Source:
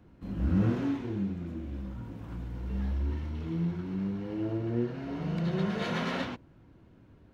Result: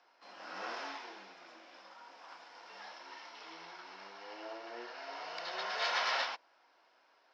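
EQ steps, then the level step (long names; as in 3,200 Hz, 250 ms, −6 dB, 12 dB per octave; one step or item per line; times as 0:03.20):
four-pole ladder high-pass 620 Hz, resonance 40%
low-pass with resonance 5,200 Hz, resonance Q 7.9
parametric band 2,000 Hz +5 dB 2 octaves
+4.0 dB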